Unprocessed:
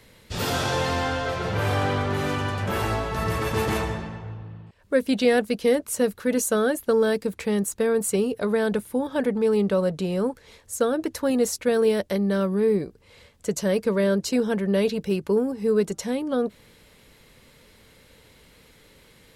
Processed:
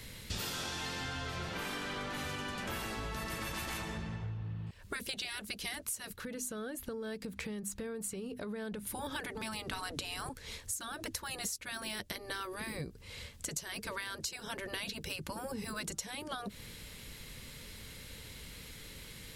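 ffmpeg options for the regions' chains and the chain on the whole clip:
-filter_complex "[0:a]asettb=1/sr,asplit=3[s0][s1][s2];[s0]atrim=end=6.164[s3];[s1]atrim=start=6.16:end=8.87,asetpts=PTS-STARTPTS,afade=t=in:d=0.004:c=qsin,afade=t=out:st=2.706:d=0.004:c=qsin,highshelf=f=4700:g=-8.5,acompressor=threshold=0.0112:ratio=4:attack=3.2:release=140:knee=1:detection=peak,bandreject=f=50:t=h:w=6,bandreject=f=100:t=h:w=6,bandreject=f=150:t=h:w=6,bandreject=f=200:t=h:w=6,bandreject=f=250:t=h:w=6[s4];[s2]atrim=start=8.866[s5];[s3][s4]acrossfade=d=0.004:c1=hsin:c2=qsin[s6];[s6][s5]acrossfade=d=0.004:c1=qsin:c2=hsin,asettb=1/sr,asplit=3[s7][s8][s9];[s7]atrim=end=9.734[s10];[s8]atrim=start=9.73:end=10.29,asetpts=PTS-STARTPTS,afade=t=in:d=0.004:c=qsin,afade=t=out:st=0.556:d=0.004:c=qsin,acontrast=68,equalizer=f=220:w=1:g=7[s11];[s9]atrim=start=10.286[s12];[s10][s11]acrossfade=d=0.004:c1=hsin:c2=qsin[s13];[s13][s12]acrossfade=d=0.004:c1=qsin:c2=hsin,afftfilt=real='re*lt(hypot(re,im),0.251)':imag='im*lt(hypot(re,im),0.251)':win_size=1024:overlap=0.75,equalizer=f=610:w=0.4:g=-10,acompressor=threshold=0.00631:ratio=12,volume=2.51"

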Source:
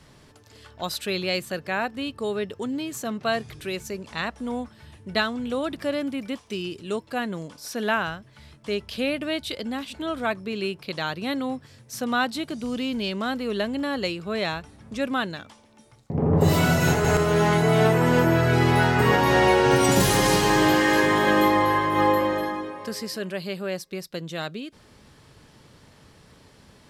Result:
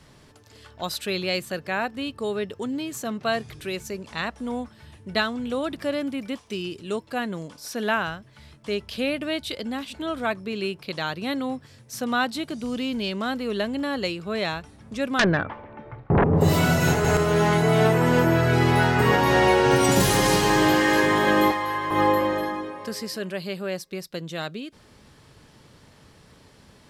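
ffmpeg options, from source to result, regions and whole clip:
-filter_complex "[0:a]asettb=1/sr,asplit=3[s0][s1][s2];[s0]atrim=end=15.194[s3];[s1]atrim=start=15.19:end=16.24,asetpts=PTS-STARTPTS,afade=t=in:d=0.004:c=qsin,afade=t=out:st=1.046:d=0.004:c=qsin,lowpass=f=2000:w=0.5412,lowpass=f=2000:w=1.3066,equalizer=f=230:w=5.3:g=-9.5,aeval=exprs='0.2*sin(PI/2*3.98*val(0)/0.2)':c=same[s4];[s2]atrim=start=16.236[s5];[s3][s4]acrossfade=d=0.004:c1=hsin:c2=qsin[s6];[s6][s5]acrossfade=d=0.004:c1=qsin:c2=hsin,asettb=1/sr,asplit=3[s7][s8][s9];[s7]atrim=end=21.514[s10];[s8]atrim=start=21.51:end=21.91,asetpts=PTS-STARTPTS,afade=t=in:d=0.004:c=qsin,afade=t=out:st=0.396:d=0.004:c=qsin,acrossover=split=84|840[s11][s12][s13];[s11]acompressor=threshold=0.00158:ratio=4[s14];[s12]acompressor=threshold=0.0224:ratio=4[s15];[s13]acompressor=threshold=0.0501:ratio=4[s16];[s14][s15][s16]amix=inputs=3:normalize=0,asoftclip=type=hard:threshold=0.126[s17];[s9]atrim=start=21.906[s18];[s10][s17]acrossfade=d=0.004:c1=hsin:c2=qsin[s19];[s19][s18]acrossfade=d=0.004:c1=qsin:c2=hsin"

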